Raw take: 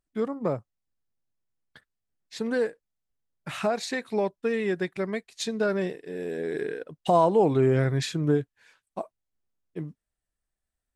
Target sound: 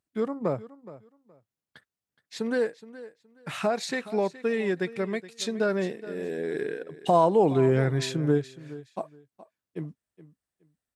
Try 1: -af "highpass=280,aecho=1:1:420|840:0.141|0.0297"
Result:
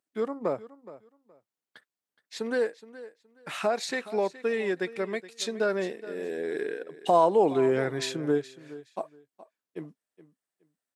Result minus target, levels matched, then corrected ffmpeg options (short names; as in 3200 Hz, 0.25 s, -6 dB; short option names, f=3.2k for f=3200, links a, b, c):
125 Hz band -9.5 dB
-af "highpass=88,aecho=1:1:420|840:0.141|0.0297"